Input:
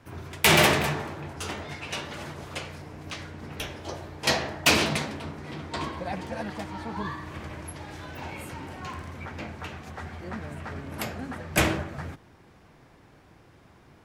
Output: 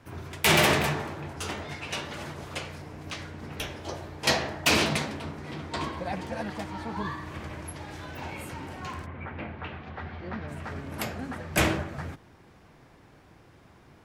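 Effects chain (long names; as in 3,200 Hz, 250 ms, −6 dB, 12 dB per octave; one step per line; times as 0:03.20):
0:09.05–0:10.47: low-pass filter 2,500 Hz → 4,800 Hz 24 dB per octave
boost into a limiter +9 dB
level −9 dB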